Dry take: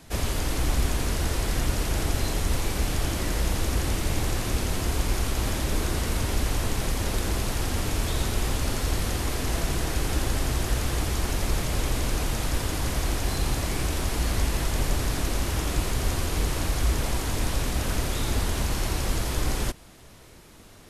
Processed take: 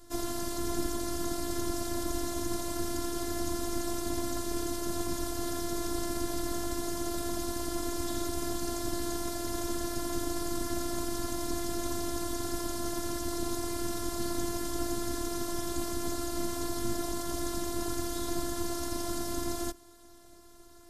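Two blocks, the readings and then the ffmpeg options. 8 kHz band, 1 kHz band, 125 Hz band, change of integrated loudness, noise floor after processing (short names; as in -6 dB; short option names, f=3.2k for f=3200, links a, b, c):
-4.5 dB, -4.5 dB, -15.5 dB, -6.5 dB, -52 dBFS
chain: -filter_complex "[0:a]aeval=exprs='val(0)*sin(2*PI*160*n/s)':c=same,acrossover=split=110|450|5600[a][b][c][d];[a]acompressor=mode=upward:threshold=-50dB:ratio=2.5[e];[e][b][c][d]amix=inputs=4:normalize=0,afftfilt=real='hypot(re,im)*cos(PI*b)':imag='0':win_size=512:overlap=0.75,equalizer=f=2.5k:t=o:w=0.74:g=-13,volume=2.5dB"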